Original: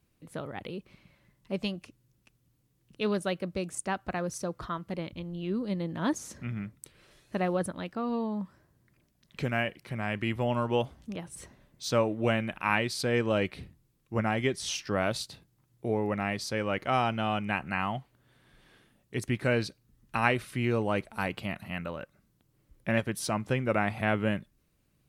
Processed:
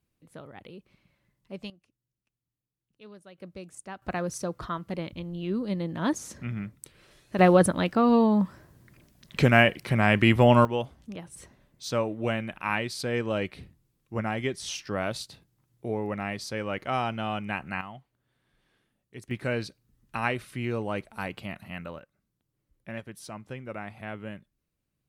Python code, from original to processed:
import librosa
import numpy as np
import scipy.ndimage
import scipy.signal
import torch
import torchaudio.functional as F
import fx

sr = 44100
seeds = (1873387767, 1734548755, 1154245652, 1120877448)

y = fx.gain(x, sr, db=fx.steps((0.0, -7.0), (1.7, -19.5), (3.38, -9.0), (4.02, 2.0), (7.39, 11.0), (10.65, -1.5), (17.81, -10.5), (19.31, -2.5), (21.99, -10.5)))